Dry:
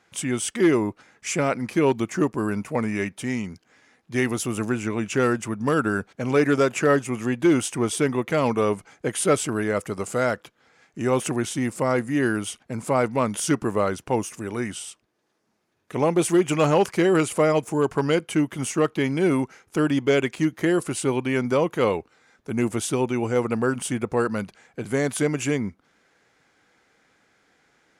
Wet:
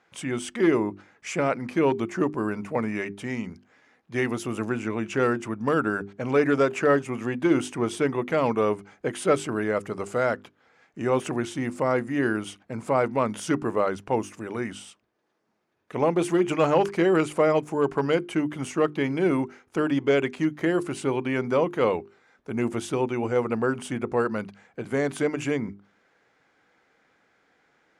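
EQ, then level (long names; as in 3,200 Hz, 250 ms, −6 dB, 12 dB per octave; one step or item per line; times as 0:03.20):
low-pass filter 2,400 Hz 6 dB per octave
low-shelf EQ 180 Hz −5.5 dB
mains-hum notches 50/100/150/200/250/300/350/400 Hz
0.0 dB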